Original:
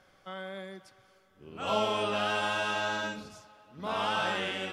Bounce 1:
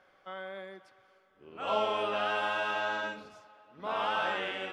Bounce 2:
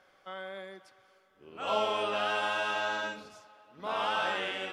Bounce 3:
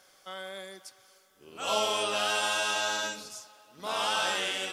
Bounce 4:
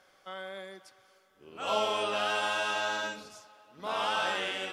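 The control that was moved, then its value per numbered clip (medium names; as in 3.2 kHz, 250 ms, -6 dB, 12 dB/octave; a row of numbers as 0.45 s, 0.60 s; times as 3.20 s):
tone controls, treble: -13 dB, -5 dB, +15 dB, +3 dB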